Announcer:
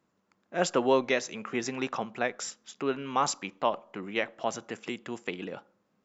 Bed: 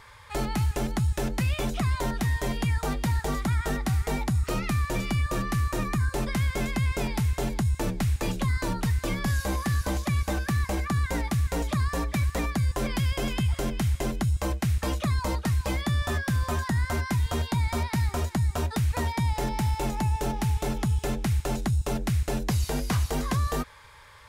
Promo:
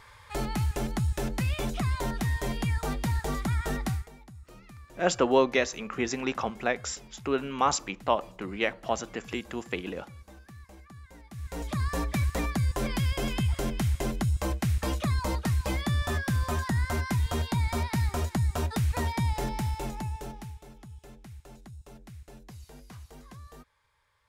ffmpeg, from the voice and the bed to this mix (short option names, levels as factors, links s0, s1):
-filter_complex "[0:a]adelay=4450,volume=1.26[s0];[1:a]volume=8.41,afade=t=out:st=3.87:d=0.22:silence=0.1,afade=t=in:st=11.29:d=0.66:silence=0.0891251,afade=t=out:st=19.23:d=1.39:silence=0.105925[s1];[s0][s1]amix=inputs=2:normalize=0"